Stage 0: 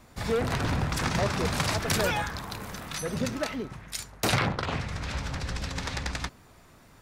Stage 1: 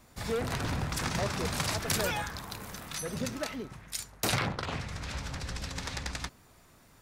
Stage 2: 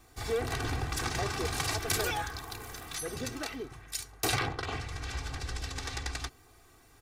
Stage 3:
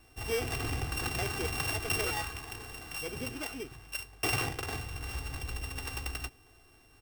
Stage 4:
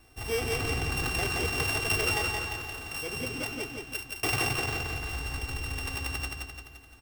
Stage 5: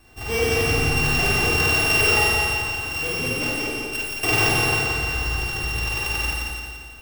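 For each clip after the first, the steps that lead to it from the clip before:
treble shelf 5.4 kHz +6.5 dB; trim -5 dB
comb 2.6 ms, depth 75%; trim -2 dB
sorted samples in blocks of 16 samples; trim -1 dB
feedback delay 172 ms, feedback 52%, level -3.5 dB; trim +1.5 dB
reverberation RT60 0.95 s, pre-delay 36 ms, DRR -4 dB; trim +3.5 dB

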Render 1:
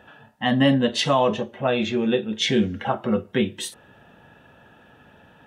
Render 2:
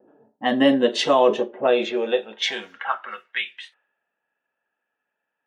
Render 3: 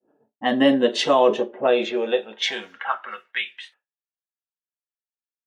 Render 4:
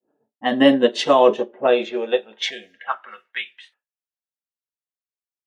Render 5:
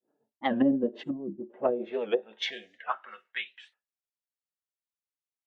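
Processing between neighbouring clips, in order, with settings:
level-controlled noise filter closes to 350 Hz, open at -17.5 dBFS; gate with hold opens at -52 dBFS; high-pass sweep 360 Hz -> 2.2 kHz, 1.64–3.45 s
expander -48 dBFS
time-frequency box 2.50–2.87 s, 750–1600 Hz -24 dB; upward expansion 1.5:1, over -32 dBFS; trim +4 dB
low-pass that closes with the level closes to 320 Hz, closed at -12 dBFS; time-frequency box 1.03–1.50 s, 380–6700 Hz -23 dB; warped record 78 rpm, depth 160 cents; trim -6.5 dB

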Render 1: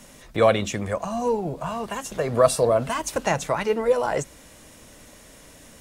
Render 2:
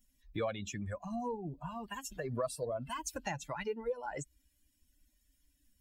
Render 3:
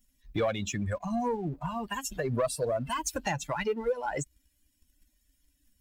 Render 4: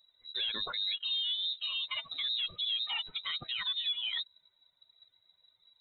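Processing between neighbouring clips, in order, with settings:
expander on every frequency bin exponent 2; compression 3:1, threshold -36 dBFS, peak gain reduction 16.5 dB; trim -1.5 dB
waveshaping leveller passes 1; trim +4.5 dB
frequency inversion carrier 3.9 kHz; peak limiter -26.5 dBFS, peak gain reduction 8.5 dB

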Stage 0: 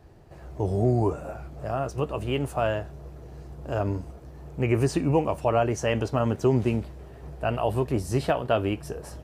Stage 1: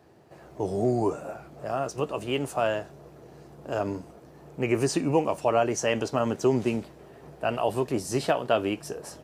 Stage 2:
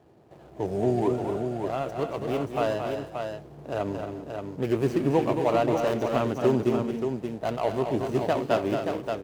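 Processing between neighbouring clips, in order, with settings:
high-pass 180 Hz 12 dB/octave; dynamic bell 6.4 kHz, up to +6 dB, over -53 dBFS, Q 0.83
median filter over 25 samples; multi-tap echo 224/272/396/578 ms -7/-11/-19.5/-6 dB

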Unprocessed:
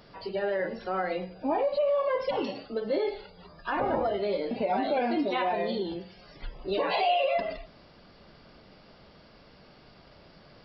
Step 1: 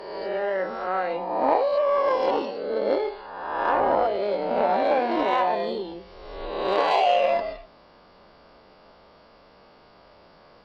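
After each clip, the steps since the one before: reverse spectral sustain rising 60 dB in 1.47 s; Chebyshev shaper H 3 -17 dB, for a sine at -12.5 dBFS; ten-band graphic EQ 125 Hz -6 dB, 500 Hz +4 dB, 1 kHz +8 dB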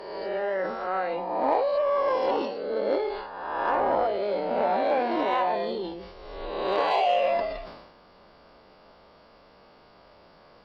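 in parallel at -5 dB: saturation -20 dBFS, distortion -12 dB; on the sum: decay stretcher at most 54 dB/s; trim -5.5 dB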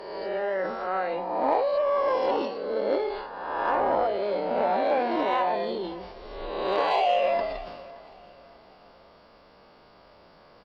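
feedback delay 570 ms, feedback 36%, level -20.5 dB

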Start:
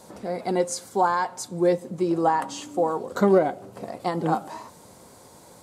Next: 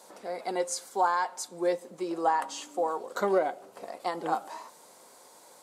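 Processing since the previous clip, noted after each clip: Bessel high-pass 550 Hz, order 2; trim -2.5 dB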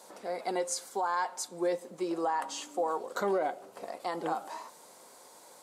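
peak limiter -22 dBFS, peak gain reduction 8.5 dB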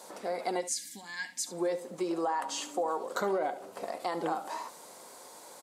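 time-frequency box 0.61–1.47 s, 330–1600 Hz -25 dB; compression 2:1, threshold -35 dBFS, peak gain reduction 5.5 dB; delay 72 ms -14.5 dB; trim +4 dB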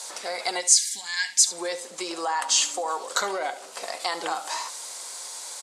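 frequency weighting ITU-R 468; trim +5.5 dB

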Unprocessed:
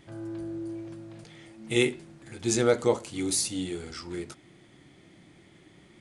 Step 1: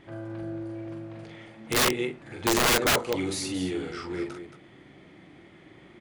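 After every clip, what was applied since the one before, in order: tone controls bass -5 dB, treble -15 dB; loudspeakers at several distances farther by 15 m -4 dB, 77 m -10 dB; integer overflow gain 21 dB; trim +4.5 dB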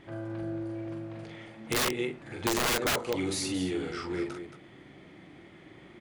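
compression 4:1, threshold -26 dBFS, peak gain reduction 6 dB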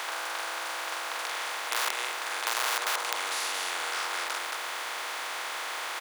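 spectral levelling over time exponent 0.2; ladder high-pass 670 Hz, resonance 25%; frequency-shifting echo 152 ms, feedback 43%, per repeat -82 Hz, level -21 dB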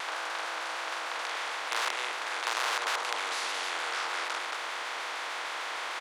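distance through air 60 m; vibrato with a chosen wave saw down 6.6 Hz, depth 100 cents

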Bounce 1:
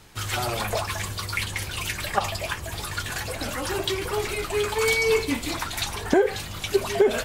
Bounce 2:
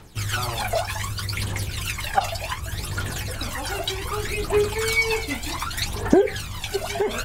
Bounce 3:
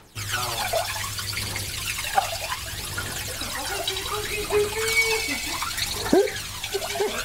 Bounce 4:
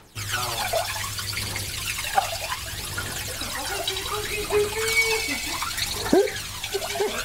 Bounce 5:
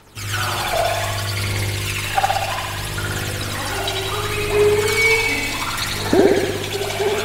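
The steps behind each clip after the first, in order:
phaser 0.66 Hz, delay 1.5 ms, feedback 62%; trim -1.5 dB
bass shelf 220 Hz -8.5 dB; on a send: feedback echo behind a high-pass 90 ms, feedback 78%, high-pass 3.3 kHz, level -3 dB
no audible change
spring tank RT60 1.3 s, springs 60 ms, chirp 65 ms, DRR -2.5 dB; trim +1.5 dB

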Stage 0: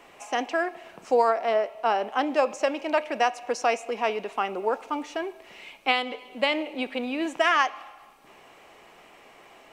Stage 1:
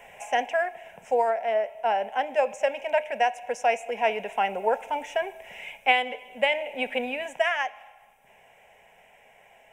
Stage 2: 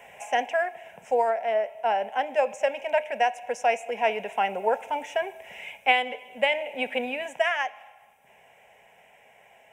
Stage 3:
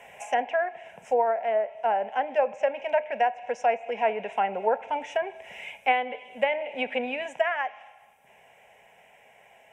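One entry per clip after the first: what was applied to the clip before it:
static phaser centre 1.2 kHz, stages 6; gain riding within 4 dB 0.5 s; trim +2 dB
high-pass 65 Hz
low-pass that closes with the level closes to 1.8 kHz, closed at -21.5 dBFS

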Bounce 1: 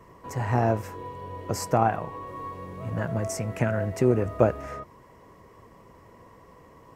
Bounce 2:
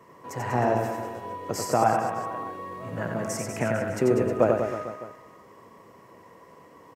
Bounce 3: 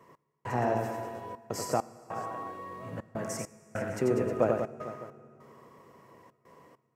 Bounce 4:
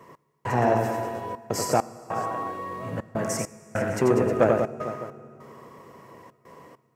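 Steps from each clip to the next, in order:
Bessel high-pass 190 Hz, order 2; reverse bouncing-ball echo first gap 90 ms, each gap 1.15×, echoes 5
trance gate "x..xxxxxx.x" 100 bpm -60 dB; on a send at -17 dB: reverberation RT60 3.2 s, pre-delay 3 ms; on the sum: trim -5 dB
transformer saturation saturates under 630 Hz; trim +8 dB

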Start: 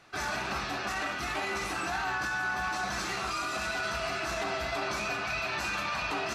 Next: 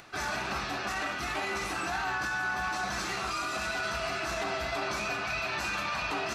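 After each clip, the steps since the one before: upward compressor, threshold -46 dBFS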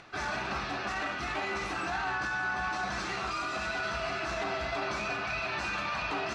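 distance through air 86 m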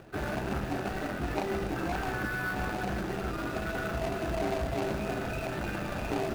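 median filter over 41 samples; trim +8 dB

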